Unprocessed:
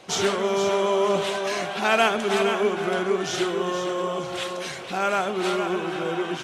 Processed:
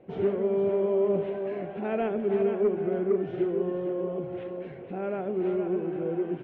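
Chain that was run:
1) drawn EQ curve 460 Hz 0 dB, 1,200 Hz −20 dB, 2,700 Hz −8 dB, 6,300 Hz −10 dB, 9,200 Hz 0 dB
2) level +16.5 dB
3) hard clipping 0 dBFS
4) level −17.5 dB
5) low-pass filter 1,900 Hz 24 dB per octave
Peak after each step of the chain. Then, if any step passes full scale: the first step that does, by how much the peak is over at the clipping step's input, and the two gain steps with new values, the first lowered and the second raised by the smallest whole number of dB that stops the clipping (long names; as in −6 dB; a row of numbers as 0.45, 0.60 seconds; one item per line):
−13.5, +3.0, 0.0, −17.5, −17.0 dBFS
step 2, 3.0 dB
step 2 +13.5 dB, step 4 −14.5 dB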